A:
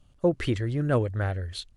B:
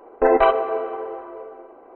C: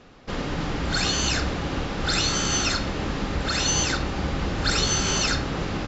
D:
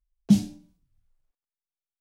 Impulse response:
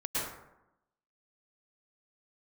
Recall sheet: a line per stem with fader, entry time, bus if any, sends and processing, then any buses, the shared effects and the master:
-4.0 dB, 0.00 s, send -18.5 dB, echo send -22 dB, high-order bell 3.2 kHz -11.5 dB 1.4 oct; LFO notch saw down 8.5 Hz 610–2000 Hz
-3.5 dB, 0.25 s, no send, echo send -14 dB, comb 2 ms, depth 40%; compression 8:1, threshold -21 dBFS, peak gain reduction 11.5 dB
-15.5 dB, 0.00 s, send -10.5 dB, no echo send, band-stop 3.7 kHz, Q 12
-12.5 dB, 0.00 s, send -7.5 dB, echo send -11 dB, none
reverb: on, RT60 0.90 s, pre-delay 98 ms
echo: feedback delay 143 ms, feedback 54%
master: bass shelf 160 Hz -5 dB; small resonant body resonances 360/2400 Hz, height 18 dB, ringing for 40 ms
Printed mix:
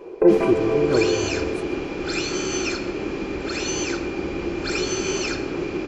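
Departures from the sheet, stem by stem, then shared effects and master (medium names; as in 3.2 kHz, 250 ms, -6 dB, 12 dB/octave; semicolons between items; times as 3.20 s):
stem B: entry 0.25 s -> 0.00 s; stem C -15.5 dB -> -6.5 dB; reverb return -7.5 dB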